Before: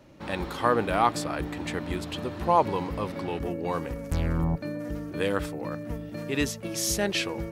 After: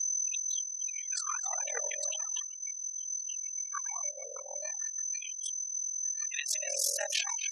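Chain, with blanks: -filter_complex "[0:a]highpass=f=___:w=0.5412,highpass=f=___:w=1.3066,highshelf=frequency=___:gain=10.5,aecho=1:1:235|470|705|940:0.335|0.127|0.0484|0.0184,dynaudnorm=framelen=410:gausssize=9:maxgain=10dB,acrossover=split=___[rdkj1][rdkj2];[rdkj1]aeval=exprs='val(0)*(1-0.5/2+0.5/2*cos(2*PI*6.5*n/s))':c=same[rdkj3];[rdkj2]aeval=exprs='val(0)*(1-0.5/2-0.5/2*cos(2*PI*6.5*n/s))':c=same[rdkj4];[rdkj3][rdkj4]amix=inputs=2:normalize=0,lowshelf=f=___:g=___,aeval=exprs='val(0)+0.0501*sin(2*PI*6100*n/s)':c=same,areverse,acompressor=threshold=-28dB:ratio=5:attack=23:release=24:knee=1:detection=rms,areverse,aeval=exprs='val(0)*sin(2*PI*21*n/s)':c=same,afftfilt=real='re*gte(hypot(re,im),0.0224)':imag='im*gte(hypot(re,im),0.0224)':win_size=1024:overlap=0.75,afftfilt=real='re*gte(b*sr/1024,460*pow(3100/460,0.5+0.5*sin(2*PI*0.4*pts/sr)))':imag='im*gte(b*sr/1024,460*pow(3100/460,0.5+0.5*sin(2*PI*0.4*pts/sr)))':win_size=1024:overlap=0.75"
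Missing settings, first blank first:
44, 44, 2.7k, 910, 370, 11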